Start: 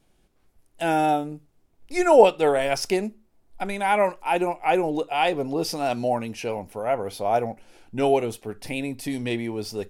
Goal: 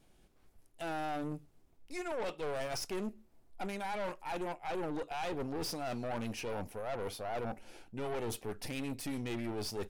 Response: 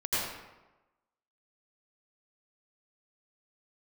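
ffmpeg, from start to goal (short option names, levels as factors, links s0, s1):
-af "areverse,acompressor=threshold=0.0316:ratio=8,areverse,aeval=exprs='(tanh(56.2*val(0)+0.55)-tanh(0.55))/56.2':c=same,atempo=1,volume=1.12"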